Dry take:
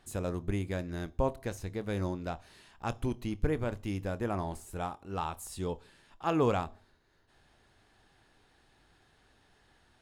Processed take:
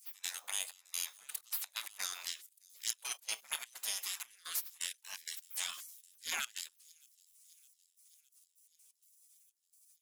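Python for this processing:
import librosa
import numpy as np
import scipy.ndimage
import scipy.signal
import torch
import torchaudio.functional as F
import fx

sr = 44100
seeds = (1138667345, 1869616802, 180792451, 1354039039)

y = fx.diode_clip(x, sr, knee_db=-17.0)
y = fx.step_gate(y, sr, bpm=128, pattern='x.xxxx..xx.x.x.', floor_db=-24.0, edge_ms=4.5)
y = fx.comb(y, sr, ms=6.2, depth=0.94, at=(3.04, 4.78))
y = fx.spec_gate(y, sr, threshold_db=-30, keep='weak')
y = fx.riaa(y, sr, side='recording')
y = fx.rider(y, sr, range_db=4, speed_s=0.5)
y = fx.echo_wet_highpass(y, sr, ms=613, feedback_pct=64, hz=5300.0, wet_db=-22.5)
y = fx.transient(y, sr, attack_db=-8, sustain_db=8, at=(5.7, 6.45))
y = np.clip(10.0 ** (31.0 / 20.0) * y, -1.0, 1.0) / 10.0 ** (31.0 / 20.0)
y = y * 10.0 ** (10.0 / 20.0)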